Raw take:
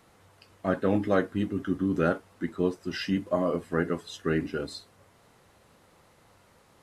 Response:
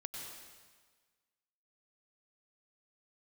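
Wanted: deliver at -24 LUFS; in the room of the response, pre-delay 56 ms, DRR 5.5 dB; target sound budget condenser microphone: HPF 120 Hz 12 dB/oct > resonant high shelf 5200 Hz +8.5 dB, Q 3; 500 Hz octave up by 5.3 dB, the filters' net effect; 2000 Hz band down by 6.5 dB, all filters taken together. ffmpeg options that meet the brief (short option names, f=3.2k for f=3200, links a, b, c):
-filter_complex "[0:a]equalizer=f=500:t=o:g=7,equalizer=f=2k:t=o:g=-9,asplit=2[a][b];[1:a]atrim=start_sample=2205,adelay=56[c];[b][c]afir=irnorm=-1:irlink=0,volume=-4dB[d];[a][d]amix=inputs=2:normalize=0,highpass=120,highshelf=f=5.2k:t=q:w=3:g=8.5,volume=1dB"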